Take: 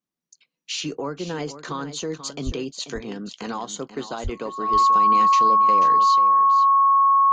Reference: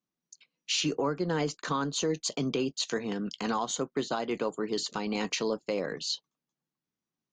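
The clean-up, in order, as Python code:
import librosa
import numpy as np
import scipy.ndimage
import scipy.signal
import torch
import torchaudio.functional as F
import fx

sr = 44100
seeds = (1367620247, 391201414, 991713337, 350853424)

y = fx.notch(x, sr, hz=1100.0, q=30.0)
y = fx.highpass(y, sr, hz=140.0, slope=24, at=(2.45, 2.57), fade=0.02)
y = fx.highpass(y, sr, hz=140.0, slope=24, at=(4.23, 4.35), fade=0.02)
y = fx.fix_echo_inverse(y, sr, delay_ms=487, level_db=-12.0)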